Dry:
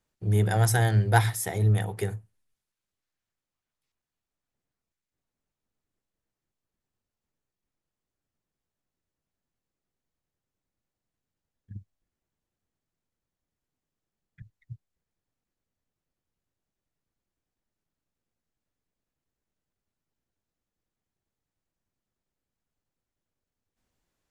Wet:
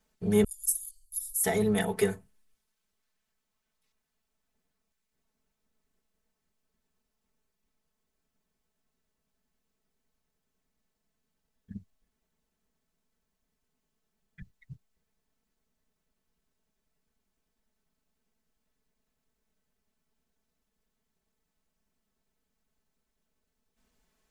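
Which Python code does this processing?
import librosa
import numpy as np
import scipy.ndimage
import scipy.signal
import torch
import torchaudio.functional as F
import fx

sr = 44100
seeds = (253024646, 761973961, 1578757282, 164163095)

p1 = fx.cheby2_bandstop(x, sr, low_hz=140.0, high_hz=1700.0, order=4, stop_db=80, at=(0.44, 1.44))
p2 = p1 + 0.92 * np.pad(p1, (int(4.6 * sr / 1000.0), 0))[:len(p1)]
p3 = 10.0 ** (-27.0 / 20.0) * np.tanh(p2 / 10.0 ** (-27.0 / 20.0))
y = p2 + F.gain(torch.from_numpy(p3), -7.0).numpy()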